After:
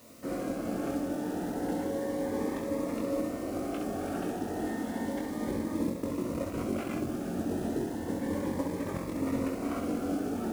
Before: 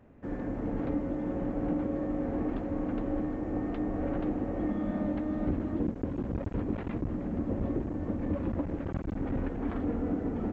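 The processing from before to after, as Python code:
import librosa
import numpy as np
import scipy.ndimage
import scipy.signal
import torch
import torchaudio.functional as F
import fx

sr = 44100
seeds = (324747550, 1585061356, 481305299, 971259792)

p1 = fx.cvsd(x, sr, bps=64000)
p2 = fx.highpass(p1, sr, hz=540.0, slope=6)
p3 = fx.rider(p2, sr, range_db=10, speed_s=0.5)
p4 = p2 + F.gain(torch.from_numpy(p3), -1.0).numpy()
p5 = fx.quant_dither(p4, sr, seeds[0], bits=10, dither='triangular')
p6 = p5 + fx.room_early_taps(p5, sr, ms=(22, 67), db=(-4.5, -5.0), dry=0)
y = fx.notch_cascade(p6, sr, direction='rising', hz=0.32)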